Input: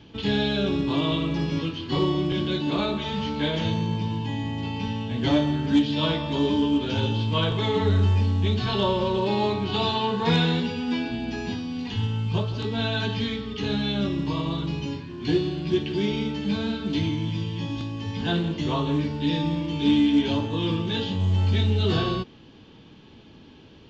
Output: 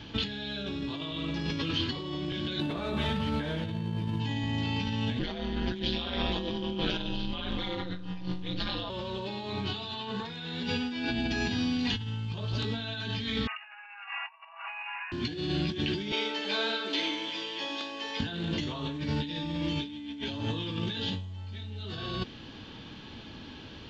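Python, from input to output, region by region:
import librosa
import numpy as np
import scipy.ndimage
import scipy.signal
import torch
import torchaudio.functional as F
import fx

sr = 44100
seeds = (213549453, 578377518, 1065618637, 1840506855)

y = fx.chain(x, sr, fx.delta_mod(bps=64000, step_db=-41.0),
    fx.lowpass(hz=1300.0, slope=6),
    fx.doubler(ms=12.0, db=-9.0), at=(2.6, 4.2))
y = fx.chain(y, sr, fx.ring_mod(carrier_hz=90.0),
    fx.lowpass(hz=5900.0, slope=24), at=(5.19, 8.9))
y = fx.chain(y, sr, fx.brickwall_bandpass(low_hz=660.0, high_hz=2900.0),
    fx.over_compress(threshold_db=-46.0, ratio=-0.5), at=(13.47, 15.12))
y = fx.chain(y, sr, fx.highpass(hz=440.0, slope=24),
    fx.tilt_eq(slope=-1.5), at=(16.12, 18.2))
y = fx.graphic_eq_15(y, sr, hz=(160, 400, 1600, 4000), db=(-4, -5, 4, 4))
y = fx.over_compress(y, sr, threshold_db=-33.0, ratio=-1.0)
y = fx.dynamic_eq(y, sr, hz=1000.0, q=1.4, threshold_db=-49.0, ratio=4.0, max_db=-4)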